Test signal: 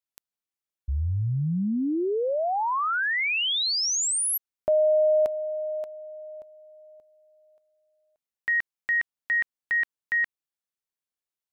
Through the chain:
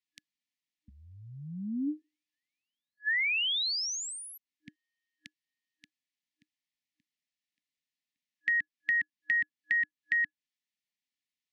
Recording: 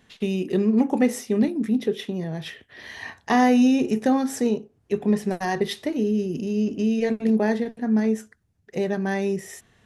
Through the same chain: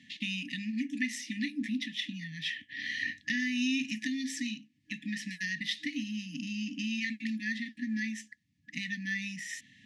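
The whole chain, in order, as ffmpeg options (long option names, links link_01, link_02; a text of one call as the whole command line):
ffmpeg -i in.wav -filter_complex "[0:a]acrossover=split=360|1000[link_01][link_02][link_03];[link_01]acompressor=threshold=-46dB:ratio=4[link_04];[link_02]acompressor=threshold=-36dB:ratio=4[link_05];[link_03]acompressor=threshold=-35dB:ratio=4[link_06];[link_04][link_05][link_06]amix=inputs=3:normalize=0,afftfilt=real='re*(1-between(b*sr/4096,310,1700))':imag='im*(1-between(b*sr/4096,310,1700))':win_size=4096:overlap=0.75,highpass=200,lowpass=5000,volume=5dB" out.wav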